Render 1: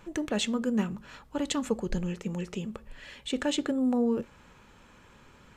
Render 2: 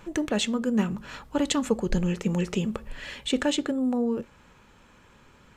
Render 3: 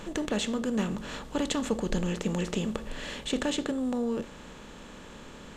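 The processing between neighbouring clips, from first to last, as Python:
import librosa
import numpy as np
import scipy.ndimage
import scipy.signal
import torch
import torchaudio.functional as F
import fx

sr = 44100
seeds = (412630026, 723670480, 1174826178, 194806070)

y1 = fx.rider(x, sr, range_db=4, speed_s=0.5)
y1 = y1 * librosa.db_to_amplitude(4.0)
y2 = fx.bin_compress(y1, sr, power=0.6)
y2 = y2 * librosa.db_to_amplitude(-6.5)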